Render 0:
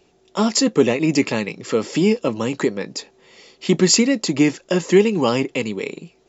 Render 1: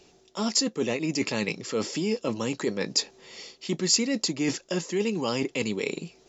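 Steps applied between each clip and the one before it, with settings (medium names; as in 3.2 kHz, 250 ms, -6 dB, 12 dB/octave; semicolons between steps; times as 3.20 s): reverse; compression 6:1, threshold -25 dBFS, peak gain reduction 16 dB; reverse; peaking EQ 5.5 kHz +7.5 dB 1.2 oct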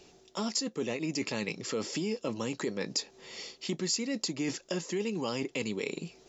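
compression 2.5:1, threshold -32 dBFS, peak gain reduction 10 dB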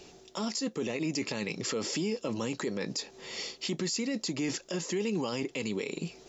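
peak limiter -28.5 dBFS, peak gain reduction 10.5 dB; trim +5 dB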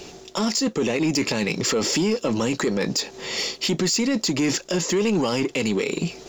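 waveshaping leveller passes 1; trim +8.5 dB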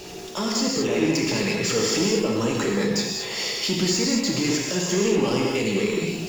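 jump at every zero crossing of -36 dBFS; gated-style reverb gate 260 ms flat, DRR -2.5 dB; trim -5 dB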